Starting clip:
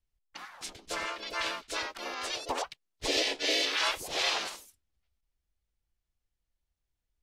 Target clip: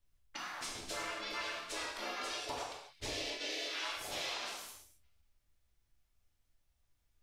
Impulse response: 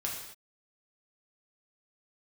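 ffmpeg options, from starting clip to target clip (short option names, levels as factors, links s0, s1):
-filter_complex "[0:a]acompressor=threshold=0.00562:ratio=6[s0];[1:a]atrim=start_sample=2205[s1];[s0][s1]afir=irnorm=-1:irlink=0,volume=1.5"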